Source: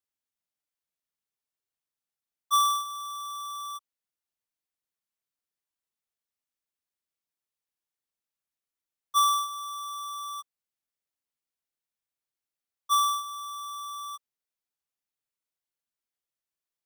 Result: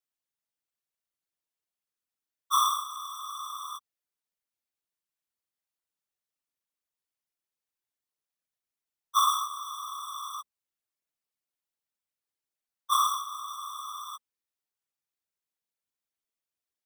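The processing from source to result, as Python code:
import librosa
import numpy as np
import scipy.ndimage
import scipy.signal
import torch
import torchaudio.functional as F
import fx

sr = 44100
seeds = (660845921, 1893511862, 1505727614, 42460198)

y = fx.whisperise(x, sr, seeds[0])
y = fx.hum_notches(y, sr, base_hz=60, count=4)
y = F.gain(torch.from_numpy(y), -1.5).numpy()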